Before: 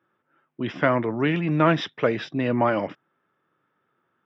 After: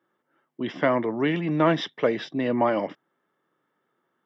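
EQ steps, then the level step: HPF 180 Hz 12 dB/oct; bell 1400 Hz -6.5 dB 0.36 oct; notch 2500 Hz, Q 7.6; 0.0 dB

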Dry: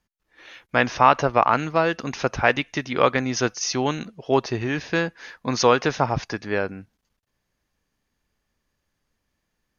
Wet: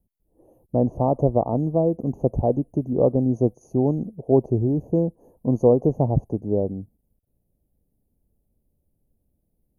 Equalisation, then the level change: inverse Chebyshev band-stop 1400–5500 Hz, stop band 50 dB; low shelf 300 Hz +8.5 dB; high shelf 4200 Hz +5 dB; 0.0 dB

